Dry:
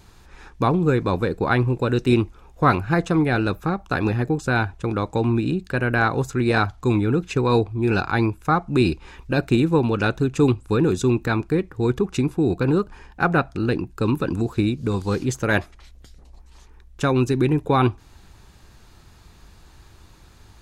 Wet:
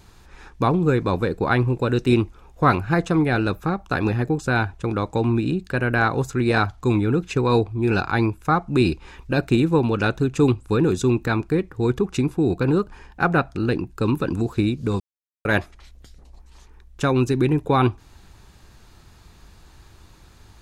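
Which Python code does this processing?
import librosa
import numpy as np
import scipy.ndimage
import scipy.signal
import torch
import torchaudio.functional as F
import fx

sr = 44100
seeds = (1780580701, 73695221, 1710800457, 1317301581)

y = fx.edit(x, sr, fx.silence(start_s=15.0, length_s=0.45), tone=tone)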